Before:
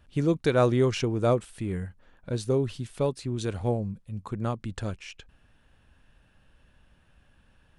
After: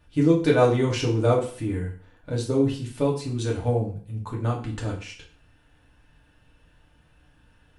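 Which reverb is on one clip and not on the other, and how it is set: FDN reverb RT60 0.46 s, low-frequency decay 1×, high-frequency decay 0.9×, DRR -3 dB; trim -1.5 dB

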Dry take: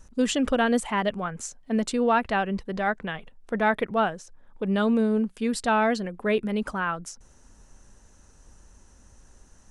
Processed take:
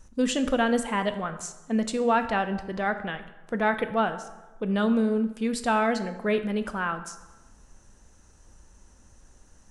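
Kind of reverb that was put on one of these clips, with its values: plate-style reverb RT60 1.1 s, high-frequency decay 0.65×, DRR 9 dB; trim -1.5 dB

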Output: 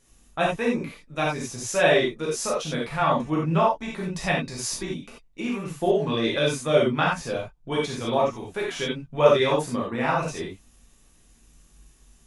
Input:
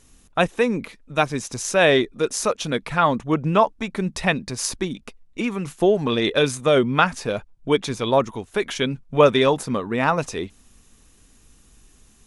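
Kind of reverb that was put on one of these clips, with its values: gated-style reverb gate 110 ms flat, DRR -5 dB; trim -9.5 dB

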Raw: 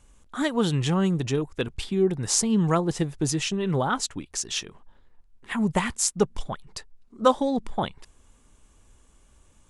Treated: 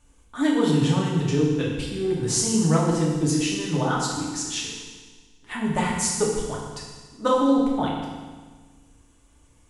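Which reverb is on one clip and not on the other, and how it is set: FDN reverb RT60 1.4 s, low-frequency decay 1.25×, high-frequency decay 1×, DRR -4.5 dB; trim -4.5 dB

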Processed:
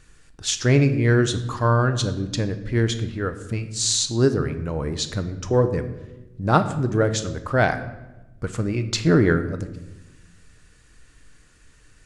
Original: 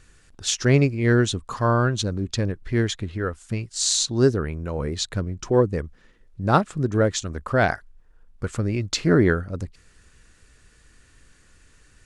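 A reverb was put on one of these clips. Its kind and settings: simulated room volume 460 m³, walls mixed, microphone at 0.5 m

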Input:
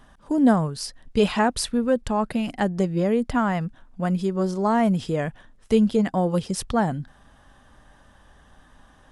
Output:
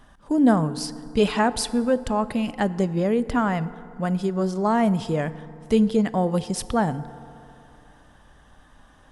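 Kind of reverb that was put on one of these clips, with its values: FDN reverb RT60 2.8 s, high-frequency decay 0.45×, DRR 15 dB

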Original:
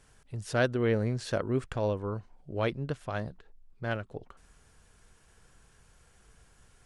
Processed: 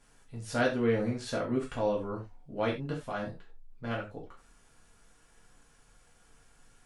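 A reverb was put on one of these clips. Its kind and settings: gated-style reverb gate 120 ms falling, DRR -4.5 dB; trim -6 dB

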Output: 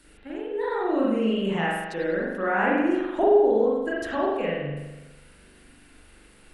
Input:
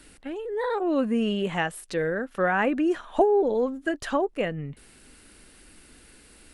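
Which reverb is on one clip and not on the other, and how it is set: spring tank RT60 1.1 s, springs 41 ms, chirp 65 ms, DRR -6 dB; trim -6 dB

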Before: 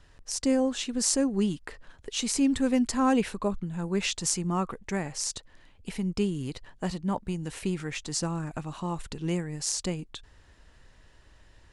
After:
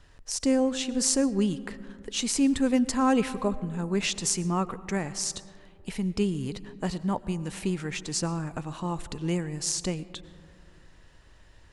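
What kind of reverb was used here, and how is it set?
algorithmic reverb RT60 2.5 s, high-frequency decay 0.3×, pre-delay 70 ms, DRR 16.5 dB; trim +1 dB

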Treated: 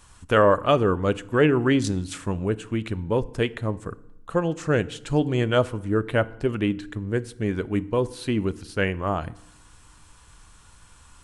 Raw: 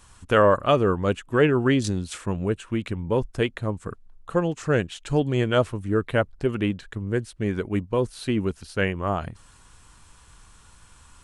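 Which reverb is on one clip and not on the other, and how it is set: FDN reverb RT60 0.83 s, low-frequency decay 1.3×, high-frequency decay 0.7×, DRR 16 dB

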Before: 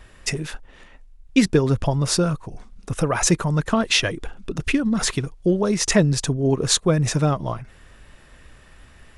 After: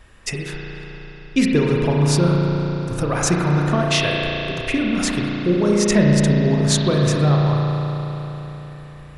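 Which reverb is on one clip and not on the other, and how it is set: spring tank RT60 4 s, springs 34 ms, chirp 35 ms, DRR -2.5 dB; trim -2 dB

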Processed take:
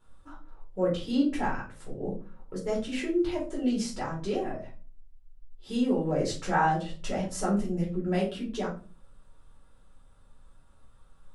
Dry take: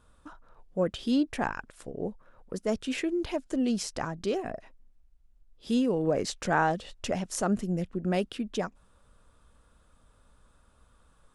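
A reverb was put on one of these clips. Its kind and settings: simulated room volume 210 m³, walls furnished, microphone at 4.3 m; trim -9.5 dB

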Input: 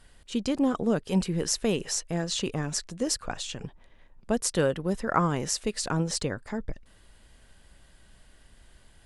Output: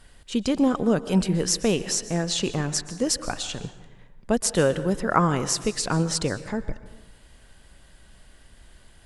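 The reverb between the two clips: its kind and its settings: plate-style reverb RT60 1.1 s, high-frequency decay 0.6×, pre-delay 110 ms, DRR 13.5 dB; trim +4 dB

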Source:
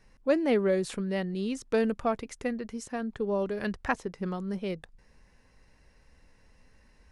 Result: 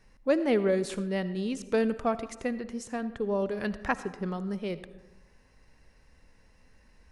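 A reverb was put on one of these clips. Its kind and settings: algorithmic reverb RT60 1.1 s, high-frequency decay 0.45×, pre-delay 35 ms, DRR 13.5 dB

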